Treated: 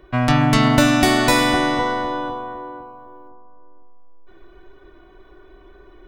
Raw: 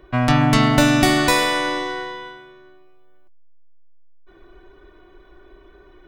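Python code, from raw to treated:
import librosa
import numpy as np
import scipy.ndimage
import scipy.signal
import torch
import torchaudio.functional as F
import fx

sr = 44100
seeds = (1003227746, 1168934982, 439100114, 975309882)

y = fx.echo_bbd(x, sr, ms=508, stages=4096, feedback_pct=30, wet_db=-4)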